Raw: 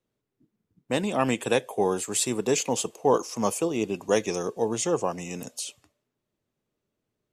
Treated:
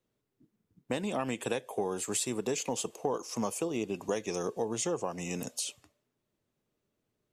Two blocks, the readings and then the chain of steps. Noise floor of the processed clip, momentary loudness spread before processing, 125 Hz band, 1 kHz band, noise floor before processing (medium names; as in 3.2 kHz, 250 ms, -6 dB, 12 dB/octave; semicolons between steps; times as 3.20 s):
-83 dBFS, 10 LU, -6.5 dB, -8.5 dB, -83 dBFS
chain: compression 6:1, threshold -29 dBFS, peak gain reduction 12.5 dB